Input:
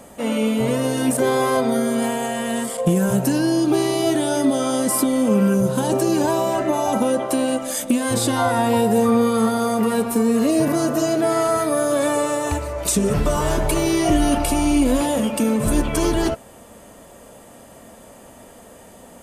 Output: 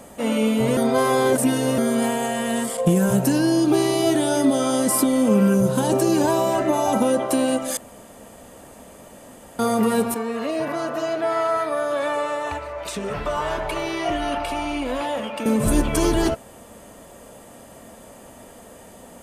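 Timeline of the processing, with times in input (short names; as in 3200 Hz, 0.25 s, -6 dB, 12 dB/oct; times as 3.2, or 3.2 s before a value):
0.77–1.78 reverse
7.77–9.59 room tone
10.14–15.46 three-band isolator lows -13 dB, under 550 Hz, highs -17 dB, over 3900 Hz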